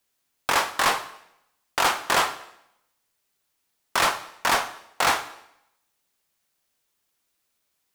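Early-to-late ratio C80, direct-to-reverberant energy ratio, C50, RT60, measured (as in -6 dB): 16.0 dB, 10.5 dB, 13.5 dB, 0.75 s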